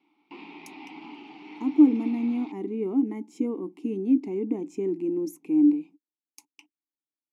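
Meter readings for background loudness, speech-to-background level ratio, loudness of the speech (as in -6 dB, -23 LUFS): -44.5 LUFS, 19.0 dB, -25.5 LUFS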